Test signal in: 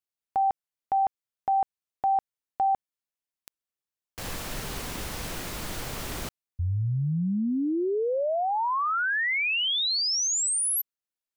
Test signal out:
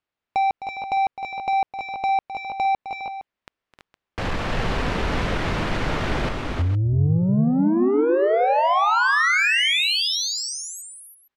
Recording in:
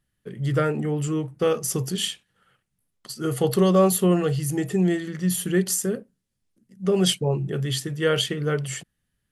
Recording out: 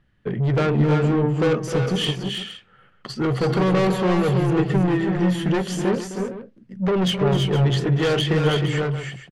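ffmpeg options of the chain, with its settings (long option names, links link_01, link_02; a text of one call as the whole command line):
ffmpeg -i in.wav -filter_complex "[0:a]lowpass=2600,asplit=2[link_01][link_02];[link_02]acompressor=threshold=-32dB:ratio=10:attack=76:release=674:detection=rms,volume=3dB[link_03];[link_01][link_03]amix=inputs=2:normalize=0,asoftclip=type=tanh:threshold=-23dB,aecho=1:1:259|310|330|463:0.237|0.376|0.501|0.224,volume=5.5dB" out.wav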